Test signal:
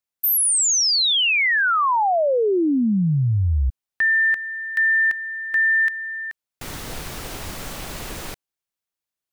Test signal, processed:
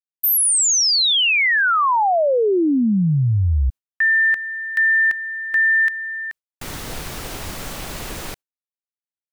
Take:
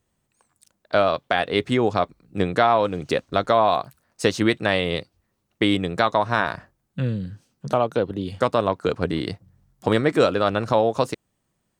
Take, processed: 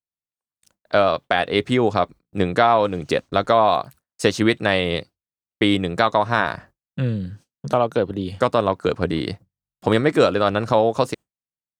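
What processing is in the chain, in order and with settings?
noise gate with hold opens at −40 dBFS, closes at −49 dBFS, hold 36 ms, range −35 dB
level +2 dB

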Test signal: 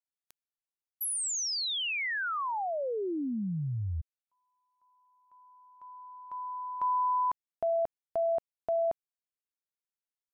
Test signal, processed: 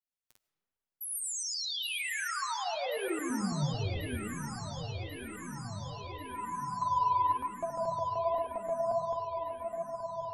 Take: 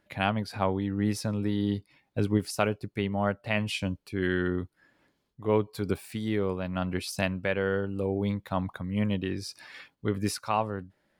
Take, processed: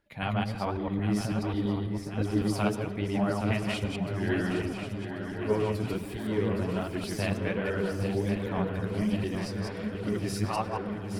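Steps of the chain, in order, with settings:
delay that plays each chunk backwards 110 ms, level −0.5 dB
low-shelf EQ 180 Hz +6 dB
on a send: feedback echo with a long and a short gap by turns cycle 1,089 ms, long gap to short 3 to 1, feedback 68%, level −9 dB
on the sum: comb and all-pass reverb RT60 2.6 s, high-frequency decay 0.4×, pre-delay 60 ms, DRR 13 dB
flanger 1.3 Hz, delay 1.9 ms, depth 8.2 ms, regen +32%
level −2.5 dB

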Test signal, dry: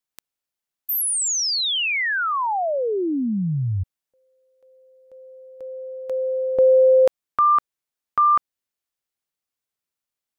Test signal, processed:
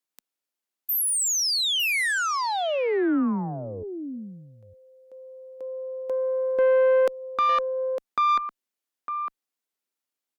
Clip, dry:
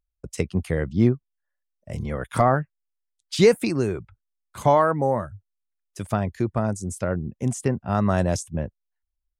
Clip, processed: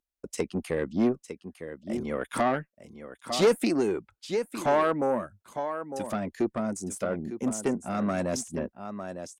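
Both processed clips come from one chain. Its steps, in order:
single-tap delay 905 ms −12.5 dB
dynamic equaliser 830 Hz, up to −3 dB, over −27 dBFS, Q 0.85
tube saturation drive 17 dB, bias 0.35
low shelf with overshoot 170 Hz −13 dB, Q 1.5

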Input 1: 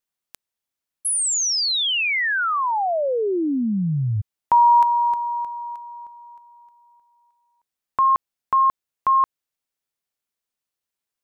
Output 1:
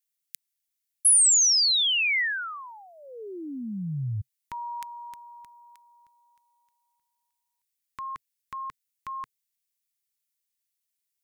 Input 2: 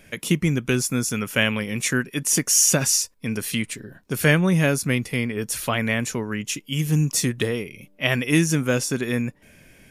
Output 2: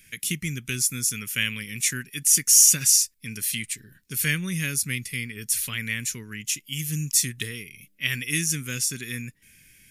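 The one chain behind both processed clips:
drawn EQ curve 130 Hz 0 dB, 450 Hz −10 dB, 670 Hz −23 dB, 2,000 Hz +5 dB, 2,900 Hz +5 dB, 12,000 Hz +13 dB
level −7.5 dB

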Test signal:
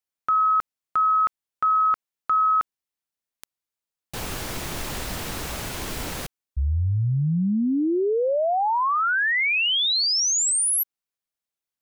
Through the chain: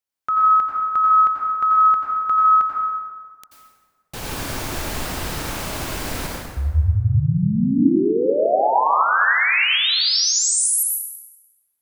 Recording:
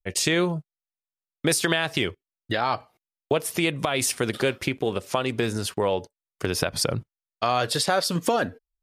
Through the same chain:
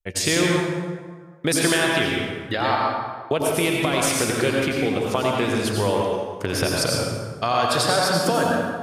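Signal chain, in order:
dense smooth reverb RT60 1.6 s, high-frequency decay 0.6×, pre-delay 75 ms, DRR −2.5 dB

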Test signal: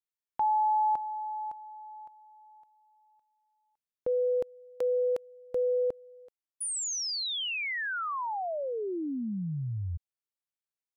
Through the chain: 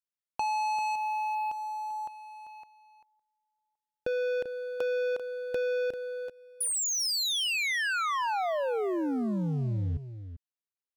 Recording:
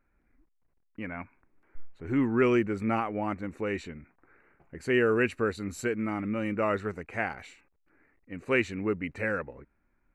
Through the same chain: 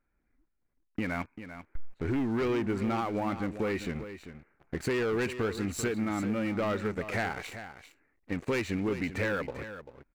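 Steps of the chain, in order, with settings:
high-shelf EQ 8,800 Hz −3 dB
leveller curve on the samples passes 3
downward compressor 6 to 1, threshold −29 dBFS
single-tap delay 392 ms −11.5 dB

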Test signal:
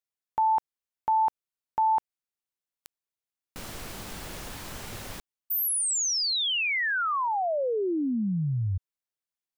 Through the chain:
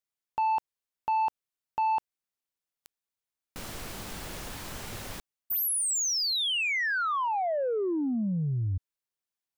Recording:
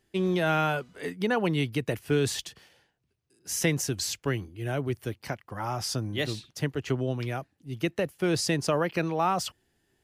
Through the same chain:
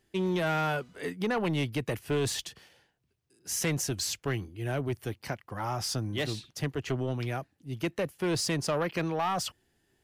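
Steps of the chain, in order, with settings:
soft clipping −22.5 dBFS

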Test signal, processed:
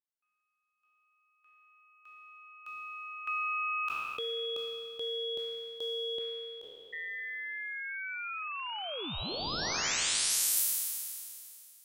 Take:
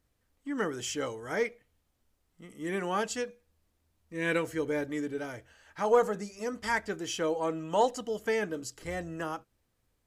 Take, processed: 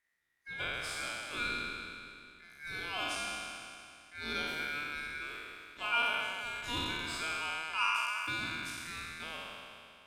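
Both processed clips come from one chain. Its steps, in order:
peak hold with a decay on every bin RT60 2.45 s
ring modulation 1,900 Hz
every ending faded ahead of time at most 600 dB per second
level −7.5 dB

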